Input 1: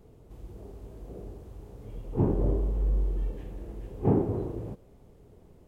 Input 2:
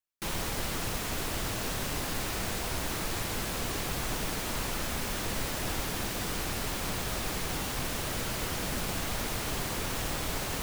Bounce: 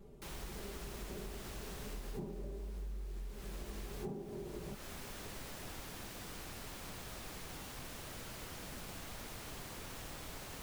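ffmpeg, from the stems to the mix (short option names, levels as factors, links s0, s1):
-filter_complex "[0:a]aecho=1:1:5.1:0.93,volume=0.631[s0];[1:a]volume=0.2[s1];[s0][s1]amix=inputs=2:normalize=0,acompressor=threshold=0.01:ratio=16"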